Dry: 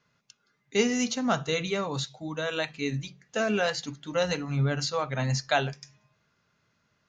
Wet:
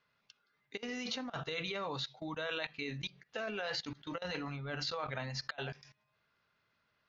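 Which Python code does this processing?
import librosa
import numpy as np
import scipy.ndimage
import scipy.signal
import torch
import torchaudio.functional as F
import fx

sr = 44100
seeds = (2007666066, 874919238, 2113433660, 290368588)

y = fx.low_shelf(x, sr, hz=450.0, db=-4.0)
y = fx.over_compress(y, sr, threshold_db=-31.0, ratio=-0.5)
y = scipy.signal.sosfilt(scipy.signal.butter(4, 4600.0, 'lowpass', fs=sr, output='sos'), y)
y = fx.level_steps(y, sr, step_db=20)
y = fx.peak_eq(y, sr, hz=170.0, db=-5.5, octaves=2.0)
y = y * librosa.db_to_amplitude(3.0)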